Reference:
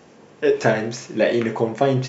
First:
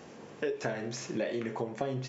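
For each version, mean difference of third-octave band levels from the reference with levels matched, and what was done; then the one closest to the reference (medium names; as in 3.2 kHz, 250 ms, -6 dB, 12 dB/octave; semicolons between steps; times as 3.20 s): 4.5 dB: compression 4:1, threshold -32 dBFS, peak gain reduction 17 dB; trim -1 dB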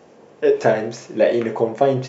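3.0 dB: peaking EQ 560 Hz +7.5 dB 1.6 oct; trim -4 dB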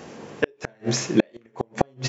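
13.0 dB: inverted gate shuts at -11 dBFS, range -42 dB; trim +7.5 dB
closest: second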